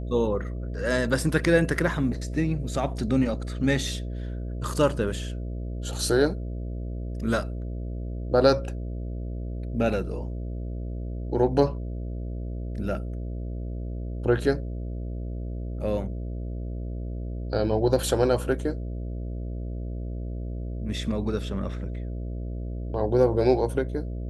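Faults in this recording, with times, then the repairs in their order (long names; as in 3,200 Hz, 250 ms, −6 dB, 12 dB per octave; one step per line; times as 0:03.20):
mains buzz 60 Hz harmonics 11 −32 dBFS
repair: hum removal 60 Hz, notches 11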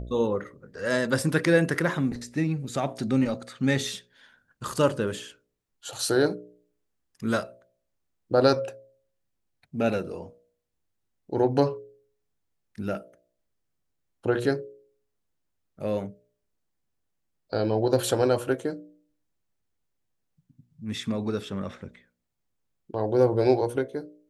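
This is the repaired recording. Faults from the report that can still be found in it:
none of them is left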